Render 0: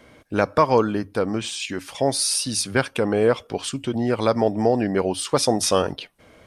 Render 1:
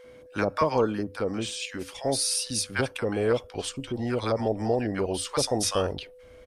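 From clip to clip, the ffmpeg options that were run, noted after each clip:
-filter_complex "[0:a]acrossover=split=860[a][b];[a]adelay=40[c];[c][b]amix=inputs=2:normalize=0,aeval=exprs='val(0)+0.00708*sin(2*PI*500*n/s)':c=same,asubboost=boost=5.5:cutoff=70,volume=-4.5dB"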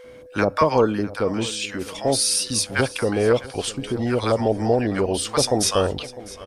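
-af "aecho=1:1:653|1306|1959:0.119|0.0499|0.021,volume=6dB"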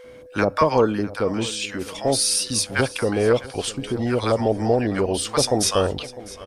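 -af "aeval=exprs='0.596*(cos(1*acos(clip(val(0)/0.596,-1,1)))-cos(1*PI/2))+0.00473*(cos(6*acos(clip(val(0)/0.596,-1,1)))-cos(6*PI/2))':c=same"

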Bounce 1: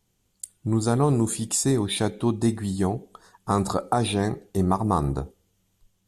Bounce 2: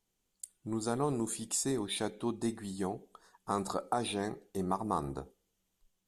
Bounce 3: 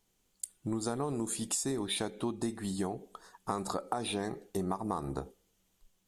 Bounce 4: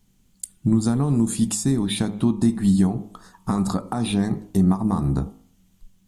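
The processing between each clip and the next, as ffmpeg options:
-af "equalizer=f=94:t=o:w=1.6:g=-11.5,volume=-8.5dB"
-af "acompressor=threshold=-37dB:ratio=6,volume=6.5dB"
-af "lowshelf=f=300:t=q:w=1.5:g=11,bandreject=f=52.37:t=h:w=4,bandreject=f=104.74:t=h:w=4,bandreject=f=157.11:t=h:w=4,bandreject=f=209.48:t=h:w=4,bandreject=f=261.85:t=h:w=4,bandreject=f=314.22:t=h:w=4,bandreject=f=366.59:t=h:w=4,bandreject=f=418.96:t=h:w=4,bandreject=f=471.33:t=h:w=4,bandreject=f=523.7:t=h:w=4,bandreject=f=576.07:t=h:w=4,bandreject=f=628.44:t=h:w=4,bandreject=f=680.81:t=h:w=4,bandreject=f=733.18:t=h:w=4,bandreject=f=785.55:t=h:w=4,bandreject=f=837.92:t=h:w=4,bandreject=f=890.29:t=h:w=4,bandreject=f=942.66:t=h:w=4,bandreject=f=995.03:t=h:w=4,bandreject=f=1.0474k:t=h:w=4,bandreject=f=1.09977k:t=h:w=4,bandreject=f=1.15214k:t=h:w=4,bandreject=f=1.20451k:t=h:w=4,bandreject=f=1.25688k:t=h:w=4,bandreject=f=1.30925k:t=h:w=4,bandreject=f=1.36162k:t=h:w=4,volume=6.5dB"

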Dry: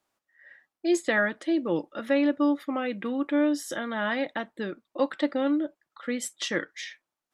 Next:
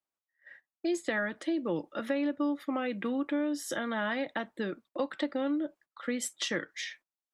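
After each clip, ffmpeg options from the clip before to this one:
-filter_complex "[0:a]agate=range=-17dB:threshold=-53dB:ratio=16:detection=peak,acrossover=split=140[a][b];[b]acompressor=threshold=-29dB:ratio=4[c];[a][c]amix=inputs=2:normalize=0"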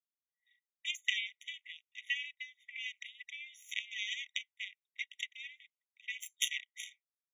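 -af "lowpass=7.8k,aeval=exprs='0.119*(cos(1*acos(clip(val(0)/0.119,-1,1)))-cos(1*PI/2))+0.0335*(cos(2*acos(clip(val(0)/0.119,-1,1)))-cos(2*PI/2))+0.0376*(cos(3*acos(clip(val(0)/0.119,-1,1)))-cos(3*PI/2))':c=same,afftfilt=real='re*eq(mod(floor(b*sr/1024/1900),2),1)':imag='im*eq(mod(floor(b*sr/1024/1900),2),1)':win_size=1024:overlap=0.75,volume=12dB"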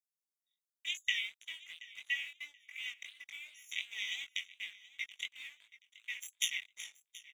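-filter_complex "[0:a]acrossover=split=4300|7600[a][b][c];[a]aeval=exprs='sgn(val(0))*max(abs(val(0))-0.0015,0)':c=same[d];[d][b][c]amix=inputs=3:normalize=0,flanger=delay=17.5:depth=4.9:speed=2.8,aecho=1:1:728|1456:0.112|0.0269,volume=3.5dB"

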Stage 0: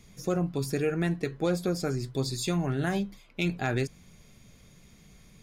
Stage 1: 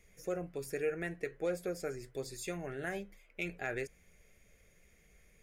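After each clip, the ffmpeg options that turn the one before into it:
-af "equalizer=f=125:t=o:w=1:g=-11,equalizer=f=250:t=o:w=1:g=-10,equalizer=f=500:t=o:w=1:g=6,equalizer=f=1k:t=o:w=1:g=-10,equalizer=f=2k:t=o:w=1:g=8,equalizer=f=4k:t=o:w=1:g=-12,volume=-6dB"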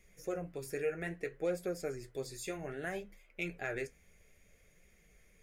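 -af "flanger=delay=5.3:depth=9.3:regen=-50:speed=0.61:shape=sinusoidal,volume=3.5dB"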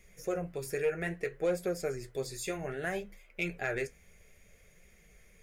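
-filter_complex "[0:a]equalizer=f=290:t=o:w=0.2:g=-9.5,asplit=2[a][b];[b]aeval=exprs='clip(val(0),-1,0.0266)':c=same,volume=-5dB[c];[a][c]amix=inputs=2:normalize=0,volume=1dB"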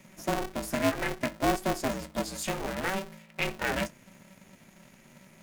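-af "aeval=exprs='val(0)*sgn(sin(2*PI*190*n/s))':c=same,volume=4dB"

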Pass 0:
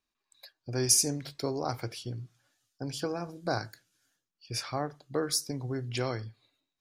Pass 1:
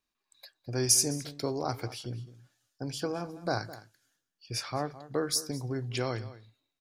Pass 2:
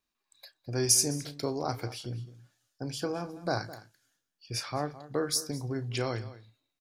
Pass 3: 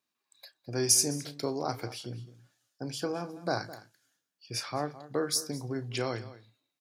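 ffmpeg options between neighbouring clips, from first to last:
-filter_complex "[0:a]asplit=2[a][b];[b]adelay=209.9,volume=-16dB,highshelf=f=4k:g=-4.72[c];[a][c]amix=inputs=2:normalize=0"
-filter_complex "[0:a]asplit=2[a][b];[b]adelay=34,volume=-14dB[c];[a][c]amix=inputs=2:normalize=0"
-af "highpass=130"

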